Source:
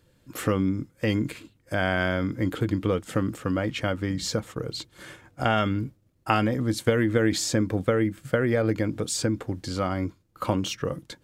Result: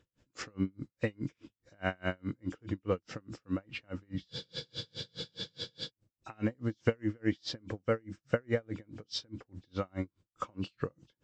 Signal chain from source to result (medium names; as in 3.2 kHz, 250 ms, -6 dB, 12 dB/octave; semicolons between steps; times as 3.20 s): knee-point frequency compression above 2.3 kHz 1.5:1; spectral freeze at 4.32 s, 1.56 s; logarithmic tremolo 4.8 Hz, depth 38 dB; trim -3.5 dB